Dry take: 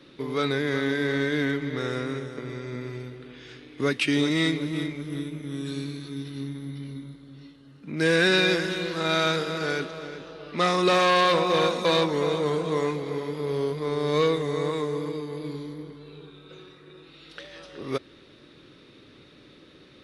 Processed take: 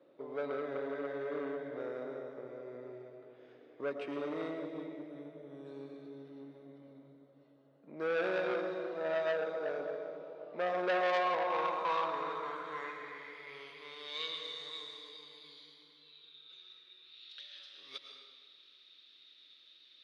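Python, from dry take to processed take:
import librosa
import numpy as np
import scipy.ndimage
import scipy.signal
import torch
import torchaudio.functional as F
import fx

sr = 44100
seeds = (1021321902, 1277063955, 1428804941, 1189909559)

y = fx.filter_sweep_bandpass(x, sr, from_hz=610.0, to_hz=3700.0, start_s=10.88, end_s=14.46, q=3.5)
y = fx.rev_freeverb(y, sr, rt60_s=1.5, hf_ratio=0.9, predelay_ms=70, drr_db=4.0)
y = fx.transformer_sat(y, sr, knee_hz=1700.0)
y = F.gain(torch.from_numpy(y), -1.0).numpy()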